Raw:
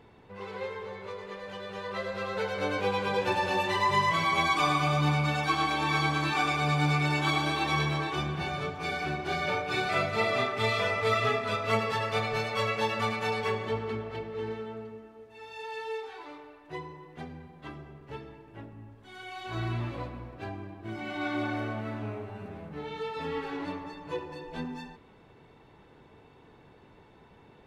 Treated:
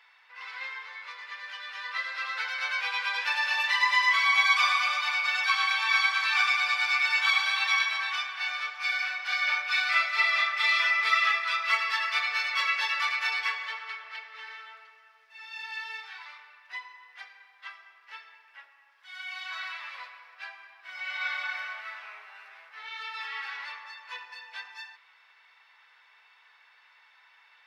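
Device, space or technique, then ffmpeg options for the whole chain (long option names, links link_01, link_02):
headphones lying on a table: -af "highpass=frequency=1100:width=0.5412,highpass=frequency=1100:width=1.3066,equalizer=frequency=500:width_type=o:width=1:gain=3,equalizer=frequency=2000:width_type=o:width=1:gain=8,equalizer=frequency=4000:width_type=o:width=1:gain=3,equalizer=frequency=8000:width_type=o:width=1:gain=-4,equalizer=frequency=5200:width_type=o:width=0.34:gain=8.5"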